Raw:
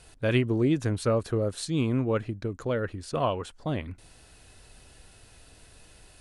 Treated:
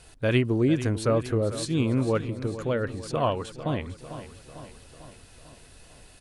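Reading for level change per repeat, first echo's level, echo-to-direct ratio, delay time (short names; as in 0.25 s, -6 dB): -5.0 dB, -13.0 dB, -11.5 dB, 0.448 s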